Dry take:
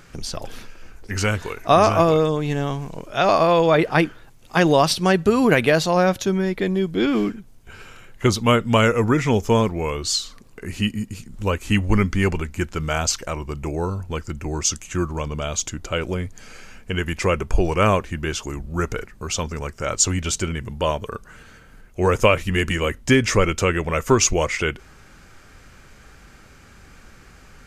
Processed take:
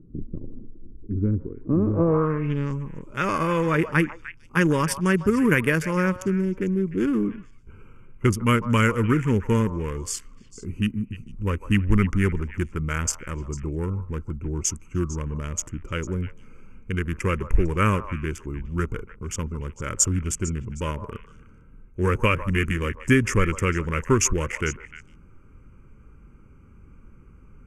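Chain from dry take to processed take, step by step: Wiener smoothing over 25 samples; fixed phaser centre 1700 Hz, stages 4; on a send: delay with a stepping band-pass 0.15 s, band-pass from 810 Hz, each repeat 1.4 oct, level -9 dB; on the sum: low-pass sweep 310 Hz -> 11000 Hz, 1.86–2.87

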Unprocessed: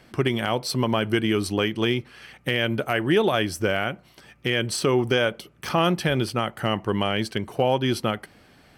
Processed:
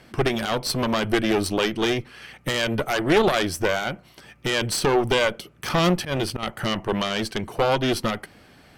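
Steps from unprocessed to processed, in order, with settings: 5.89–6.43 auto swell 0.112 s; added harmonics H 4 -10 dB, 5 -23 dB, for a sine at -8.5 dBFS

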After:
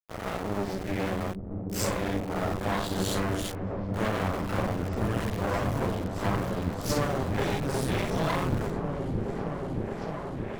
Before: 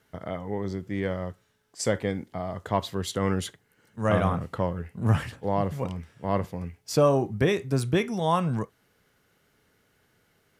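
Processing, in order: phase scrambler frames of 0.2 s; compressor 5:1, threshold -29 dBFS, peak gain reduction 11.5 dB; hum 60 Hz, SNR 14 dB; sample gate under -37.5 dBFS; added harmonics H 4 -11 dB, 7 -29 dB, 8 -18 dB, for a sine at -19 dBFS; on a send: repeats that get brighter 0.624 s, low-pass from 200 Hz, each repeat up 1 oct, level 0 dB

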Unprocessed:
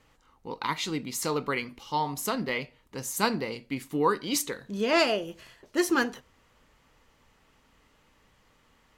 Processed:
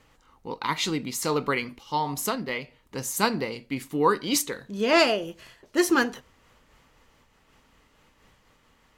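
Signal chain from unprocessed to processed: noise-modulated level, depth 65%; gain +5.5 dB

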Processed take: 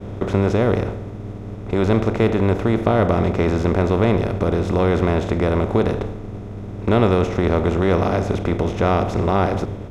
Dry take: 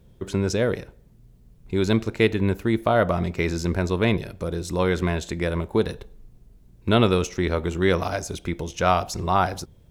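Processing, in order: per-bin compression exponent 0.4; tone controls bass -4 dB, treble -2 dB; buzz 100 Hz, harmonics 4, -34 dBFS; expander -25 dBFS; tilt -3 dB/oct; gain -4.5 dB

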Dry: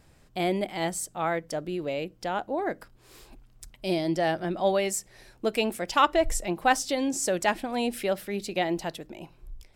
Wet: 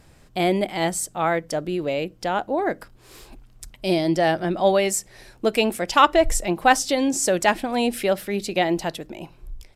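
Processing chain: downsampling 32000 Hz; gain +6 dB

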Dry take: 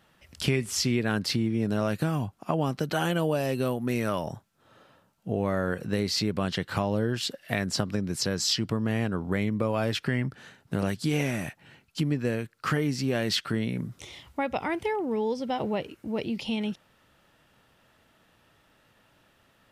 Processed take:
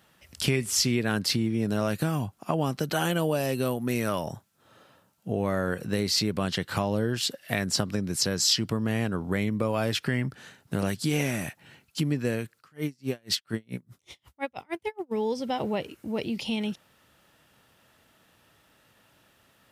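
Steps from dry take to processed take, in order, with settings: HPF 48 Hz; high shelf 5500 Hz +7.5 dB; 12.58–15.11 dB-linear tremolo 3.5 Hz -> 8 Hz, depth 38 dB

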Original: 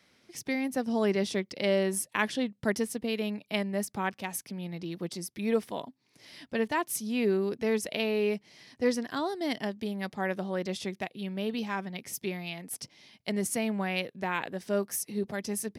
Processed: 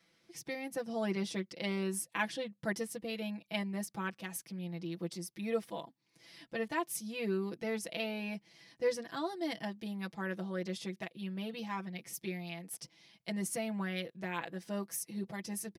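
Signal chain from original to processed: comb 6 ms, depth 92%; gain -8.5 dB

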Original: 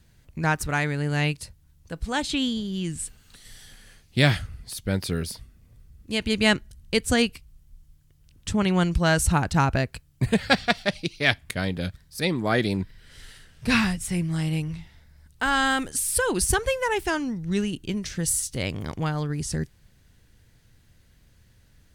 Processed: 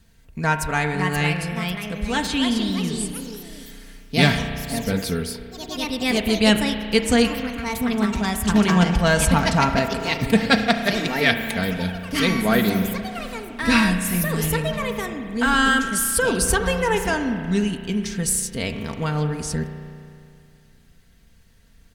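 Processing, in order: echoes that change speed 0.627 s, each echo +3 st, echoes 3, each echo -6 dB; comb 4.4 ms, depth 53%; spring tank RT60 2.4 s, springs 33 ms, chirp 60 ms, DRR 7 dB; gain +1.5 dB

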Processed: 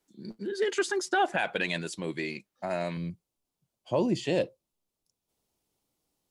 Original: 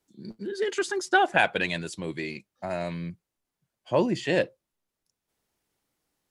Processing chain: bell 87 Hz -10.5 dB 0.85 oct, from 2.97 s 1700 Hz; limiter -16.5 dBFS, peak gain reduction 9 dB

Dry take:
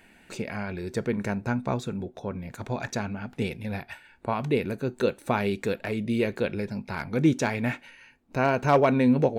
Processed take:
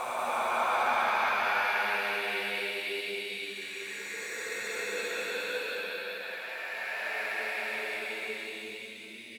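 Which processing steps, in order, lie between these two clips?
HPF 1000 Hz 12 dB/oct; sample leveller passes 1; Paulstretch 12×, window 0.25 s, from 5.26; on a send: echo 0.188 s -5.5 dB; on the sum: gain -1.5 dB

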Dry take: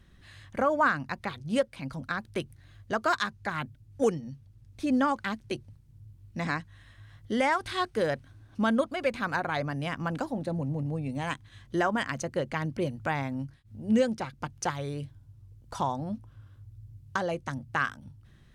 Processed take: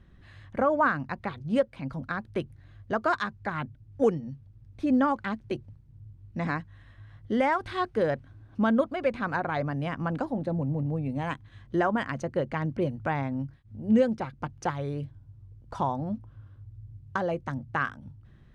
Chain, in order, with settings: LPF 1400 Hz 6 dB/oct; gain +2.5 dB

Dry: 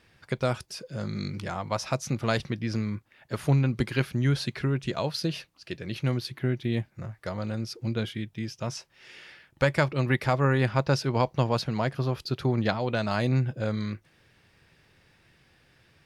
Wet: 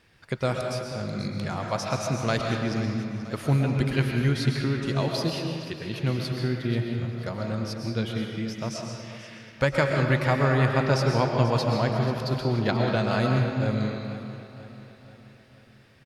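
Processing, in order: on a send: feedback echo 0.485 s, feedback 51%, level -14.5 dB; on the sum: digital reverb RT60 1.7 s, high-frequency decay 0.7×, pre-delay 85 ms, DRR 1.5 dB

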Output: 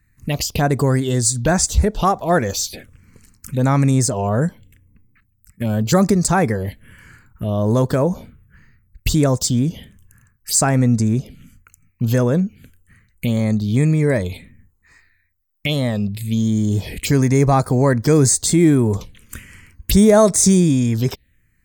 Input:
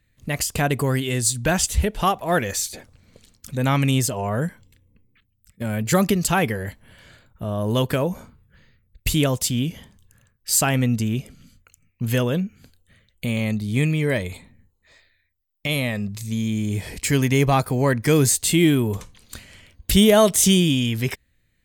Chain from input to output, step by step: in parallel at -3 dB: limiter -13.5 dBFS, peak gain reduction 10 dB; on the sum: envelope phaser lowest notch 570 Hz, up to 3000 Hz, full sweep at -14 dBFS; gain +1.5 dB

